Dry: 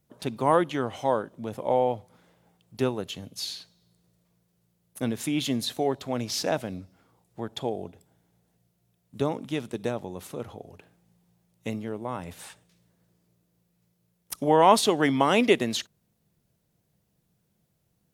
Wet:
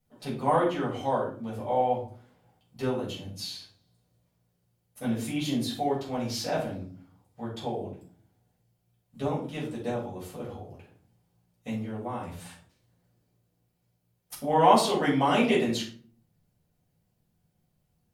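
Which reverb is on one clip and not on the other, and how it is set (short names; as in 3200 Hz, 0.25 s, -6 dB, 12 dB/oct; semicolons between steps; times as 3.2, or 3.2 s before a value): shoebox room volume 340 m³, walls furnished, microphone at 6.4 m; gain -12.5 dB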